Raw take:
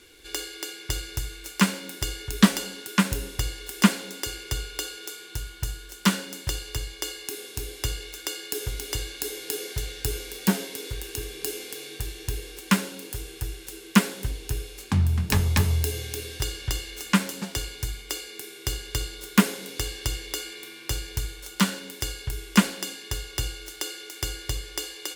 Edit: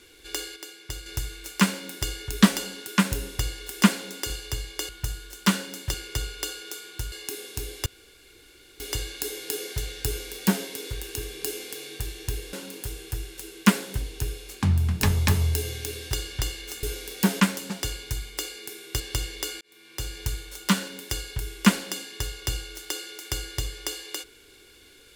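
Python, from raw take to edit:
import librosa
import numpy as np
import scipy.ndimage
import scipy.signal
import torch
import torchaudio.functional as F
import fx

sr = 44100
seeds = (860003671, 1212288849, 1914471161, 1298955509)

y = fx.edit(x, sr, fx.clip_gain(start_s=0.56, length_s=0.5, db=-6.5),
    fx.swap(start_s=4.3, length_s=1.18, other_s=6.53, other_length_s=0.59),
    fx.room_tone_fill(start_s=7.86, length_s=0.94),
    fx.duplicate(start_s=10.07, length_s=0.57, to_s=17.12),
    fx.cut(start_s=12.53, length_s=0.29),
    fx.cut(start_s=18.72, length_s=1.19),
    fx.fade_in_span(start_s=20.52, length_s=0.62), tone=tone)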